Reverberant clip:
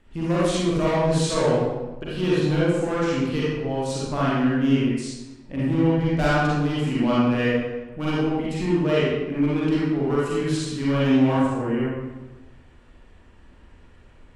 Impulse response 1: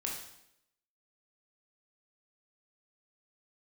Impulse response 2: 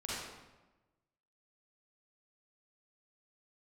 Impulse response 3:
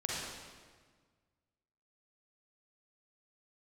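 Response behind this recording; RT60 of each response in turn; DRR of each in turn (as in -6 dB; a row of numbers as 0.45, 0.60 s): 2; 0.80, 1.1, 1.6 s; -2.0, -8.0, -5.0 dB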